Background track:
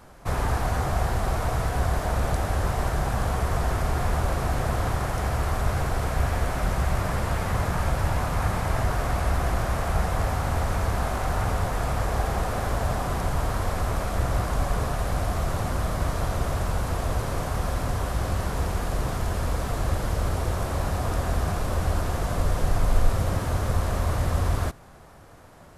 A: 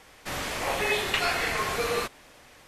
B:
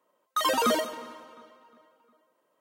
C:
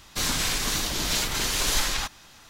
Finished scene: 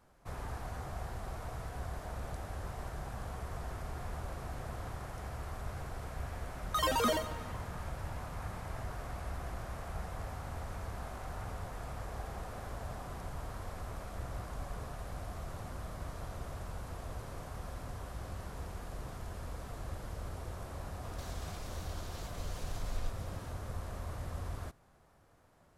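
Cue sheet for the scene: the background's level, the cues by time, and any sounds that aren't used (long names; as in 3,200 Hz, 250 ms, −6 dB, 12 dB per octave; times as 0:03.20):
background track −16.5 dB
0:06.38: mix in B −6 dB
0:21.03: mix in C −11 dB + downward compressor 5 to 1, threshold −40 dBFS
not used: A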